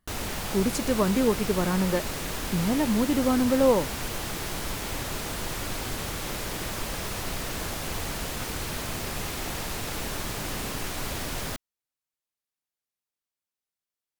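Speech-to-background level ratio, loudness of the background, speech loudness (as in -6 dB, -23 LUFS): 6.5 dB, -32.0 LUFS, -25.5 LUFS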